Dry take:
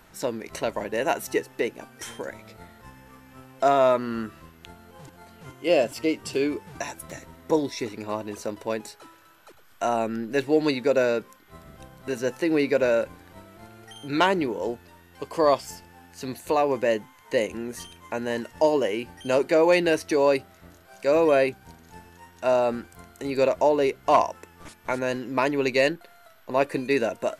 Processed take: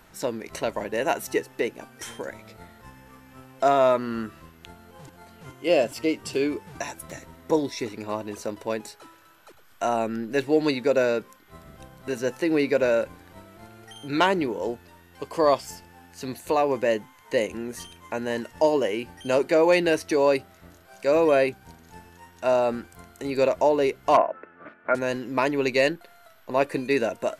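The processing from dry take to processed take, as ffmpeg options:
-filter_complex "[0:a]asettb=1/sr,asplit=3[a][b][c];[a]atrim=end=24.174[d];[b]atrim=start=24.17:end=24.95,asetpts=PTS-STARTPTS,afade=t=in:d=0.004:c=qsin,afade=t=out:st=0.776:d=0.004:c=qsin,highpass=220,equalizer=f=270:t=q:w=4:g=4,equalizer=f=610:t=q:w=4:g=8,equalizer=f=900:t=q:w=4:g=-7,equalizer=f=1.4k:t=q:w=4:g=9,lowpass=f=2.2k:w=0.5412,lowpass=f=2.2k:w=1.3066[e];[c]atrim=start=24.946[f];[d][e]acrossfade=d=0.004:c1=hsin:c2=qsin[g];[g][f]acrossfade=d=0.004:c1=qsin:c2=hsin"

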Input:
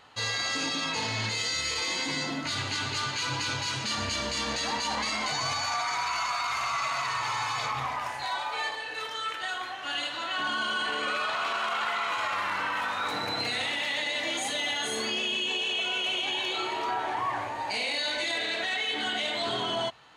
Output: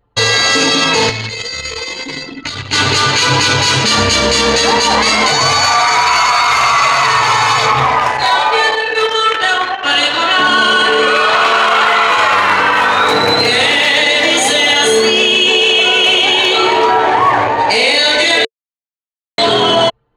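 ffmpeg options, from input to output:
-filter_complex "[0:a]asettb=1/sr,asplit=3[a][b][c];[a]atrim=end=1.094[d];[b]atrim=start=1.09:end=2.73,asetpts=PTS-STARTPTS,afade=t=in:d=0.004:c=qsin,afade=t=out:st=1.636:d=0.004:c=qsin,acrossover=split=84|1900[e][f][g];[e]acompressor=threshold=-52dB:ratio=4[h];[f]acompressor=threshold=-45dB:ratio=4[i];[g]acompressor=threshold=-40dB:ratio=4[j];[h][i][j]amix=inputs=3:normalize=0[k];[c]atrim=start=2.726[l];[d][k]acrossfade=d=0.004:c1=hsin:c2=qsin[m];[m][l]acrossfade=d=0.004:c1=qsin:c2=hsin,asplit=3[n][o][p];[n]atrim=end=18.45,asetpts=PTS-STARTPTS,afade=t=out:st=18.446:d=0.004:c=hsin[q];[o]atrim=start=18.45:end=19.38,asetpts=PTS-STARTPTS,volume=0[r];[p]atrim=start=19.38,asetpts=PTS-STARTPTS,afade=t=in:d=0.004:c=hsin[s];[q][r][s]concat=n=3:v=0:a=1,anlmdn=1.58,equalizer=f=450:t=o:w=0.28:g=9.5,alimiter=level_in=21.5dB:limit=-1dB:release=50:level=0:latency=1,volume=-1dB"

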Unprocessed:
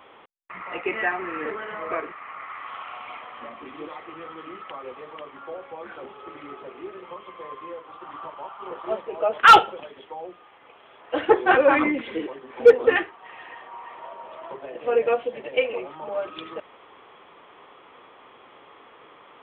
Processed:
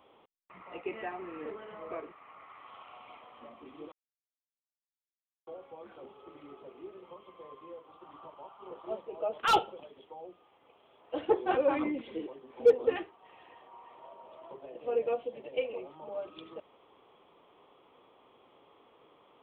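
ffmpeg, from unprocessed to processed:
-filter_complex "[0:a]asplit=3[a][b][c];[a]atrim=end=3.92,asetpts=PTS-STARTPTS,afade=t=out:st=3.916:d=0.004:c=hsin[d];[b]atrim=start=3.92:end=5.47,asetpts=PTS-STARTPTS,volume=0[e];[c]atrim=start=5.47,asetpts=PTS-STARTPTS,afade=t=in:d=0.004:c=hsin[f];[d][e][f]concat=n=3:v=0:a=1,equalizer=f=1.7k:t=o:w=1.2:g=-12.5,volume=-8dB"

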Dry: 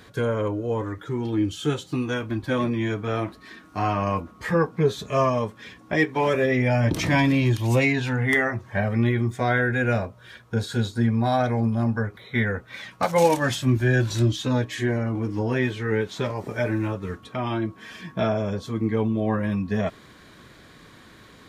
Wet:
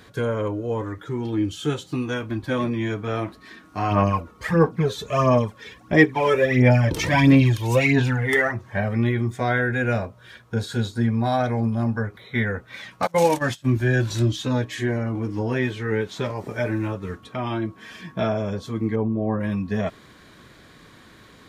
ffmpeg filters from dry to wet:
-filter_complex "[0:a]asplit=3[a][b][c];[a]afade=t=out:st=3.9:d=0.02[d];[b]aphaser=in_gain=1:out_gain=1:delay=2.3:decay=0.58:speed=1.5:type=sinusoidal,afade=t=in:st=3.9:d=0.02,afade=t=out:st=8.52:d=0.02[e];[c]afade=t=in:st=8.52:d=0.02[f];[d][e][f]amix=inputs=3:normalize=0,asettb=1/sr,asplit=3[g][h][i];[g]atrim=end=13.074[j];[h]atrim=start=13.07:end=13.74,asetpts=PTS-STARTPTS,afade=t=in:d=0.004:c=qsin,afade=t=out:st=0.666:d=0.004:c=qsin,agate=range=-21dB:threshold=-27dB:ratio=16:release=100:detection=peak[k];[i]atrim=start=13.736[l];[j][k]acrossfade=d=0.004:c1=hsin:c2=qsin[m];[m][l]acrossfade=d=0.004:c1=qsin:c2=hsin,asplit=3[n][o][p];[n]afade=t=out:st=18.95:d=0.02[q];[o]lowpass=1.1k,afade=t=in:st=18.95:d=0.02,afade=t=out:st=19.39:d=0.02[r];[p]afade=t=in:st=19.39:d=0.02[s];[q][r][s]amix=inputs=3:normalize=0"

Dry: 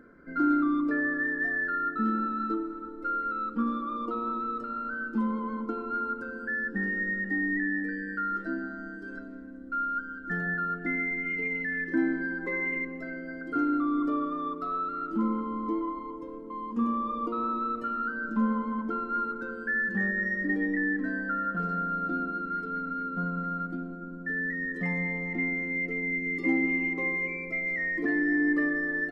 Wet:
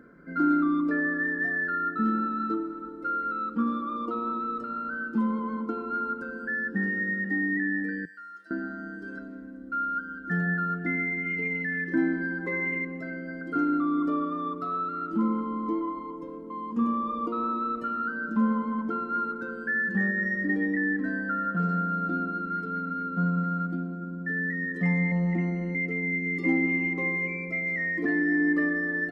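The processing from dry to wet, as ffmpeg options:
-filter_complex "[0:a]asettb=1/sr,asplit=3[a][b][c];[a]atrim=end=8.054[d];[b]atrim=start=8.05:end=8.51,asetpts=PTS-STARTPTS,afade=t=in:d=0.004:c=qsin,afade=t=out:st=0.456:d=0.004:c=qsin,aderivative[e];[c]atrim=start=8.506[f];[d][e]acrossfade=d=0.004:c1=hsin:c2=qsin[g];[g][f]acrossfade=d=0.004:c1=qsin:c2=hsin,asettb=1/sr,asplit=3[h][i][j];[h]atrim=end=25.114[k];[i]atrim=start=25.11:end=25.75,asetpts=PTS-STARTPTS,afade=t=in:d=0.004:c=qsin,afade=t=out:st=0.636:d=0.004:c=qsin,aecho=1:1:5.5:0.84,atrim=end_sample=28224[l];[j]atrim=start=25.746[m];[k][l]acrossfade=d=0.004:c1=hsin:c2=qsin[n];[n][m]acrossfade=d=0.004:c1=qsin:c2=hsin,highpass=41,equalizer=f=170:w=4.3:g=7.5,volume=1dB"

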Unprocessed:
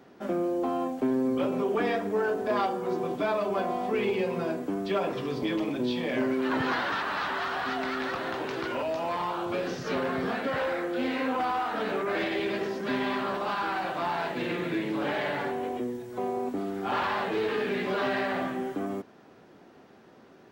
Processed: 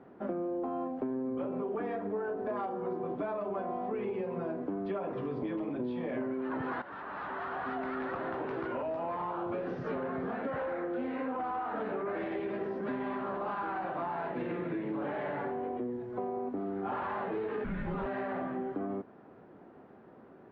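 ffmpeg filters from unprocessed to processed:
-filter_complex "[0:a]asettb=1/sr,asplit=3[a][b][c];[a]atrim=end=17.644[d];[b]atrim=start=17.64:end=18.06,asetpts=PTS-STARTPTS,afade=t=in:d=0.004:c=qsin,afade=t=out:st=0.416:d=0.004:c=qsin,afreqshift=-210[e];[c]atrim=start=18.056[f];[d][e]acrossfade=d=0.004:c1=hsin:c2=qsin[g];[g][f]acrossfade=d=0.004:c1=qsin:c2=hsin,asplit=2[h][i];[h]atrim=end=6.82,asetpts=PTS-STARTPTS,afade=t=out:st=6.816:d=0.004:c=hsin:silence=0.188365[j];[i]atrim=start=6.82,asetpts=PTS-STARTPTS,afade=t=in:d=1.14:silence=0.188365[k];[j][k]concat=n=2:v=0:a=1,lowpass=1.4k,acompressor=threshold=-32dB:ratio=6"

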